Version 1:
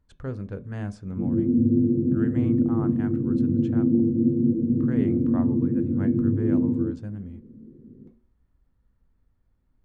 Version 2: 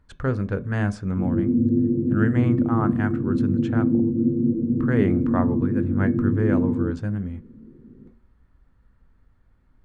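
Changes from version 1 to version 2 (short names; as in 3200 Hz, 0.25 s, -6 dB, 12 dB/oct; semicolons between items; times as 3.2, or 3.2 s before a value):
speech +8.0 dB; master: add bell 1500 Hz +6 dB 1.3 oct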